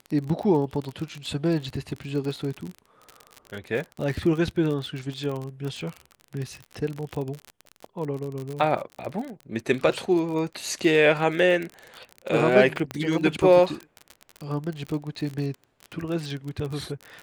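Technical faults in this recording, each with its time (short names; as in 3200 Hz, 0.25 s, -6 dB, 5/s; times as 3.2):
crackle 37/s -29 dBFS
12.91 pop -16 dBFS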